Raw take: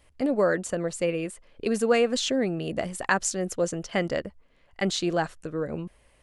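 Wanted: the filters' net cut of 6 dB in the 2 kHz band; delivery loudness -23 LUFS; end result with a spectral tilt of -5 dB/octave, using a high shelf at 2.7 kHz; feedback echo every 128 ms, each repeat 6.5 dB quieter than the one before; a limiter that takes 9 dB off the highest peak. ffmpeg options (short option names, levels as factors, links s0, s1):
-af "equalizer=f=2000:t=o:g=-6,highshelf=f=2700:g=-4.5,alimiter=limit=0.1:level=0:latency=1,aecho=1:1:128|256|384|512|640|768:0.473|0.222|0.105|0.0491|0.0231|0.0109,volume=2.24"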